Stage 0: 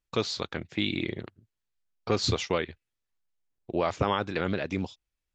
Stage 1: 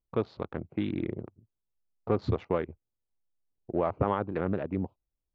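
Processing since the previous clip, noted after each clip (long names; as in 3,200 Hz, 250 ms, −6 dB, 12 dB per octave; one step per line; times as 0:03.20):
adaptive Wiener filter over 25 samples
low-pass filter 1,300 Hz 12 dB per octave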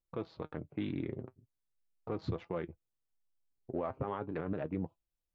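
flanger 0.39 Hz, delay 5.7 ms, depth 2.1 ms, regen +58%
brickwall limiter −25.5 dBFS, peak gain reduction 9 dB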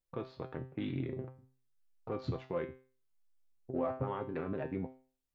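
tuned comb filter 130 Hz, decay 0.4 s, harmonics all, mix 80%
level +9.5 dB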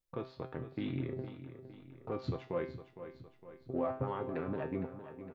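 repeating echo 460 ms, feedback 52%, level −12 dB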